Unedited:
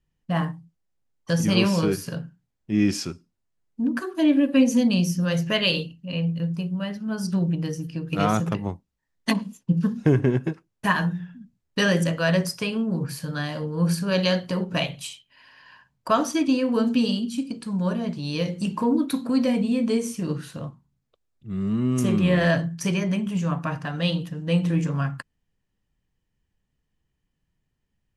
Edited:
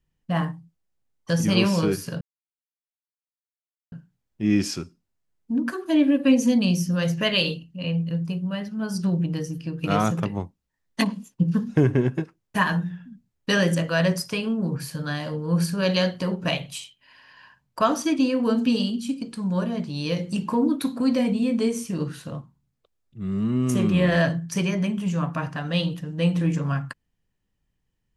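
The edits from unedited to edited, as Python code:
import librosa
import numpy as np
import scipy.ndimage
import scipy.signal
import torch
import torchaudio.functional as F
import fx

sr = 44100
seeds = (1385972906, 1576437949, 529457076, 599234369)

y = fx.edit(x, sr, fx.insert_silence(at_s=2.21, length_s=1.71), tone=tone)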